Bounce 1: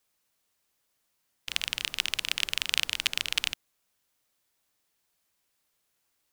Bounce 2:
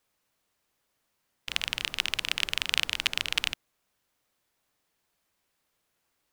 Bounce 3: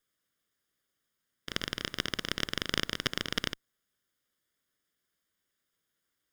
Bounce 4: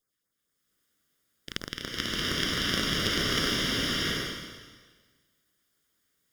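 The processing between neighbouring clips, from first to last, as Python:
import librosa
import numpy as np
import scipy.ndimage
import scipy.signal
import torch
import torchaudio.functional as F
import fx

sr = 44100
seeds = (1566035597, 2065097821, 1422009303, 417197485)

y1 = fx.high_shelf(x, sr, hz=3200.0, db=-7.5)
y1 = y1 * librosa.db_to_amplitude(4.0)
y2 = fx.lower_of_two(y1, sr, delay_ms=0.6)
y2 = fx.low_shelf(y2, sr, hz=110.0, db=-6.0)
y2 = y2 * librosa.db_to_amplitude(-3.5)
y3 = fx.filter_lfo_notch(y2, sr, shape='sine', hz=4.4, low_hz=570.0, high_hz=3400.0, q=0.86)
y3 = fx.rev_bloom(y3, sr, seeds[0], attack_ms=730, drr_db=-8.0)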